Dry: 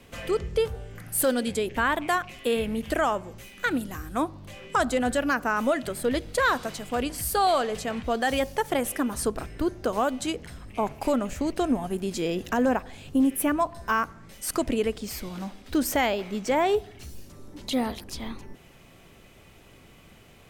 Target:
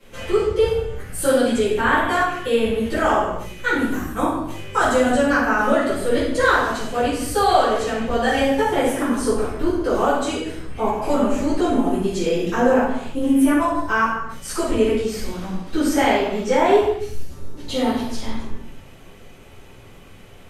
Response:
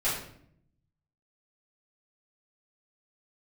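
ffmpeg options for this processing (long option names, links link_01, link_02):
-filter_complex "[0:a]acrossover=split=9900[link_01][link_02];[link_02]acompressor=threshold=-53dB:ratio=4:attack=1:release=60[link_03];[link_01][link_03]amix=inputs=2:normalize=0,asettb=1/sr,asplit=3[link_04][link_05][link_06];[link_04]atrim=end=3.894[link_07];[link_05]atrim=start=3.89:end=5.09,asetpts=PTS-STARTPTS,afade=type=in:duration=0.004:curve=qsin,afade=type=out:start_time=1.196:duration=0.004:curve=qsin,highshelf=frequency=9700:gain=9[link_08];[link_06]atrim=start=5.086[link_09];[link_07][link_08]acrossfade=duration=0.004:curve1=hsin:curve2=qsin[link_10];[link_10][link_09]acrossfade=duration=0.004:curve1=qsin:curve2=hsin[link_11];[1:a]atrim=start_sample=2205,afade=type=out:start_time=0.29:duration=0.01,atrim=end_sample=13230,asetrate=28665,aresample=44100[link_12];[link_11][link_12]afir=irnorm=-1:irlink=0,volume=-6dB"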